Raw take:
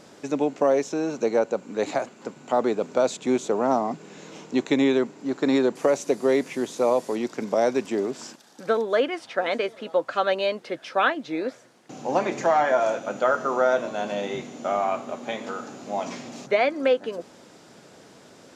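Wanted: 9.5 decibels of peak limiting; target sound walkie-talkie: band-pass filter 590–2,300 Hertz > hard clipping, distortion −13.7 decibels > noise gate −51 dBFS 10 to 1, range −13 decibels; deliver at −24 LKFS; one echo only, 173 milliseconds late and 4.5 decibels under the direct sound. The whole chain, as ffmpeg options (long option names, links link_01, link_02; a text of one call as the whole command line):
ffmpeg -i in.wav -af "alimiter=limit=-16.5dB:level=0:latency=1,highpass=590,lowpass=2300,aecho=1:1:173:0.596,asoftclip=type=hard:threshold=-25dB,agate=range=-13dB:threshold=-51dB:ratio=10,volume=8.5dB" out.wav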